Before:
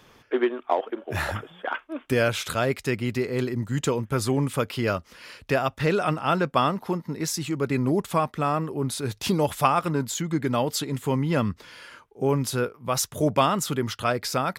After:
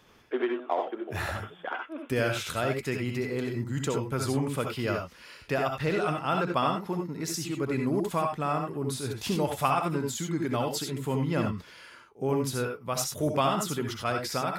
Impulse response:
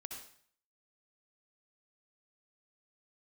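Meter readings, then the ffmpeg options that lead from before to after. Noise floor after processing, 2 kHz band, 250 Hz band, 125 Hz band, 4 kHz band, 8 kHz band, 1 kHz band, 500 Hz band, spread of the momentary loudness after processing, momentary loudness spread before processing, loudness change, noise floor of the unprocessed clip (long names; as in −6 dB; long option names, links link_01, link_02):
−53 dBFS, −4.0 dB, −4.0 dB, −4.5 dB, −4.0 dB, −4.0 dB, −4.0 dB, −4.0 dB, 7 LU, 8 LU, −4.0 dB, −57 dBFS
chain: -filter_complex "[1:a]atrim=start_sample=2205,atrim=end_sample=4410[link_01];[0:a][link_01]afir=irnorm=-1:irlink=0"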